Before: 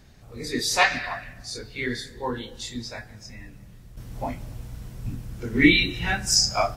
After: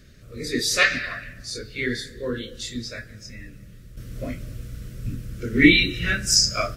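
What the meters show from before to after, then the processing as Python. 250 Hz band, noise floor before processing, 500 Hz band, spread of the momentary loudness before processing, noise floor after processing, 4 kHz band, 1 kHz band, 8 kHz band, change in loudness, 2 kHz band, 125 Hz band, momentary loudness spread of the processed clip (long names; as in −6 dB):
+2.5 dB, −48 dBFS, +1.0 dB, 20 LU, −46 dBFS, +2.0 dB, −6.5 dB, +2.0 dB, +2.5 dB, +2.5 dB, +2.0 dB, 21 LU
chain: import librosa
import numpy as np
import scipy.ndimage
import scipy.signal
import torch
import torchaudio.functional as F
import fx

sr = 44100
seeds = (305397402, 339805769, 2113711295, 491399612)

y = scipy.signal.sosfilt(scipy.signal.cheby1(2, 1.0, [560.0, 1300.0], 'bandstop', fs=sr, output='sos'), x)
y = F.gain(torch.from_numpy(y), 3.0).numpy()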